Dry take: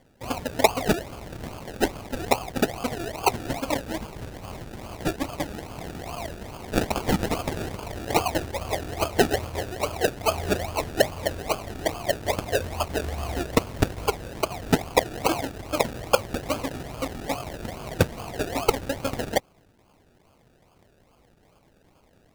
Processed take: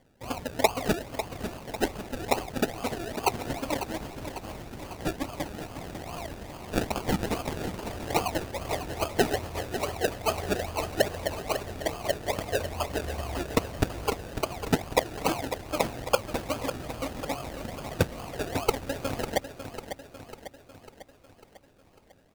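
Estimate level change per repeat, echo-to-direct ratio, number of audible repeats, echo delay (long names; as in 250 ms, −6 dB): −5.0 dB, −8.5 dB, 5, 548 ms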